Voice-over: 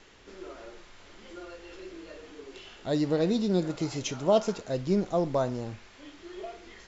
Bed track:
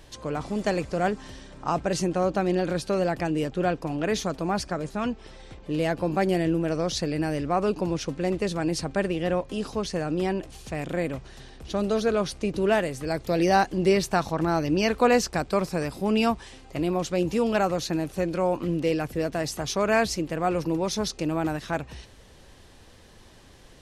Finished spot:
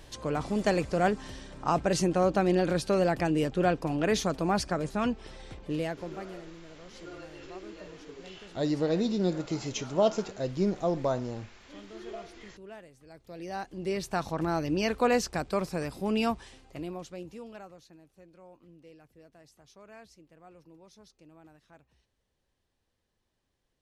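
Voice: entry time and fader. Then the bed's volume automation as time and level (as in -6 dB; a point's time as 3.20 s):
5.70 s, -1.5 dB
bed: 5.62 s -0.5 dB
6.44 s -24 dB
13.08 s -24 dB
14.28 s -5 dB
16.42 s -5 dB
17.98 s -28.5 dB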